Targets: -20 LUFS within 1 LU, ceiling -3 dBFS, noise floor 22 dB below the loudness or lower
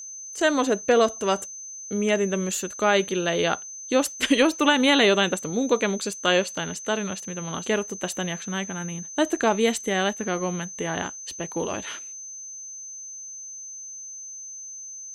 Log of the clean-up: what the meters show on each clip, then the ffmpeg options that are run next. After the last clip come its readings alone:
steady tone 6200 Hz; tone level -36 dBFS; loudness -24.0 LUFS; peak -6.0 dBFS; loudness target -20.0 LUFS
-> -af "bandreject=f=6.2k:w=30"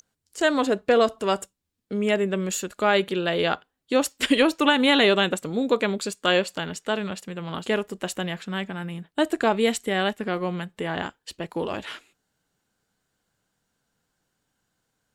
steady tone none; loudness -24.5 LUFS; peak -6.0 dBFS; loudness target -20.0 LUFS
-> -af "volume=4.5dB,alimiter=limit=-3dB:level=0:latency=1"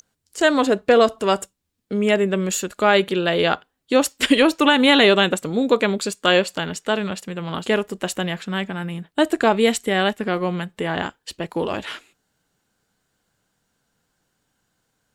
loudness -20.0 LUFS; peak -3.0 dBFS; noise floor -74 dBFS

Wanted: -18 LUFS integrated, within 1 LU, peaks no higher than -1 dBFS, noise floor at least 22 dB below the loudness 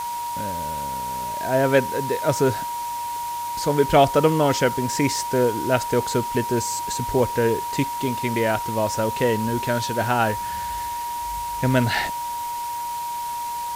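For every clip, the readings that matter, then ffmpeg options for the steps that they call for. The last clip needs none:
steady tone 950 Hz; tone level -26 dBFS; noise floor -29 dBFS; noise floor target -45 dBFS; loudness -23.0 LUFS; peak -4.5 dBFS; loudness target -18.0 LUFS
-> -af "bandreject=f=950:w=30"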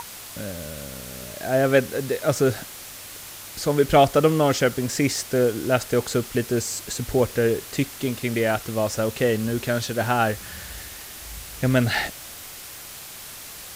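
steady tone none; noise floor -40 dBFS; noise floor target -45 dBFS
-> -af "afftdn=nr=6:nf=-40"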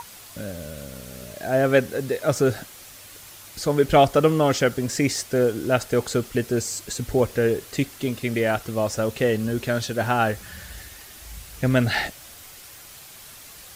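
noise floor -44 dBFS; noise floor target -45 dBFS
-> -af "afftdn=nr=6:nf=-44"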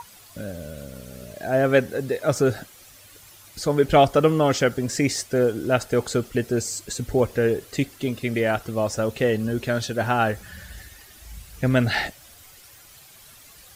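noise floor -49 dBFS; loudness -23.0 LUFS; peak -5.0 dBFS; loudness target -18.0 LUFS
-> -af "volume=5dB,alimiter=limit=-1dB:level=0:latency=1"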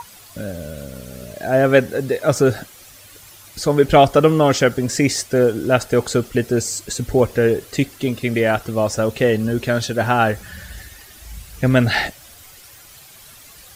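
loudness -18.0 LUFS; peak -1.0 dBFS; noise floor -44 dBFS

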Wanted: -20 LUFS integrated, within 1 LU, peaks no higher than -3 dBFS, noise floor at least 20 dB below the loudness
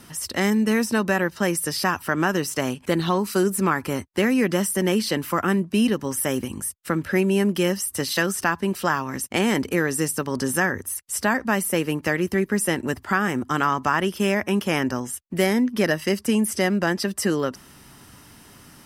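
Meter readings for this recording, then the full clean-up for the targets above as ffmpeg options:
loudness -23.0 LUFS; peak -6.5 dBFS; loudness target -20.0 LUFS
-> -af "volume=3dB"

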